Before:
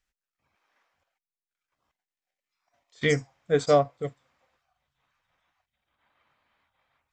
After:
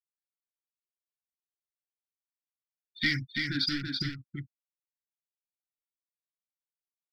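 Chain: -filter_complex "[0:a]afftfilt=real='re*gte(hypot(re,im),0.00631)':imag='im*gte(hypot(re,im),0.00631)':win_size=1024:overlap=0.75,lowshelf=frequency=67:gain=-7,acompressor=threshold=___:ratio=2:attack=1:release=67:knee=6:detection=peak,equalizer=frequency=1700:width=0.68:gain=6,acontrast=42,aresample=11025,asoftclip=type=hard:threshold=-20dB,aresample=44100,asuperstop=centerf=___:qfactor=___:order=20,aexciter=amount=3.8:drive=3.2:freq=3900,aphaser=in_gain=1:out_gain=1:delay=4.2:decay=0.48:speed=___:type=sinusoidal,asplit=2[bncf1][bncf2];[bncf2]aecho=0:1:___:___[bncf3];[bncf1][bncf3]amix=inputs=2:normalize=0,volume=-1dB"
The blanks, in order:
-35dB, 710, 0.68, 1.5, 332, 0.596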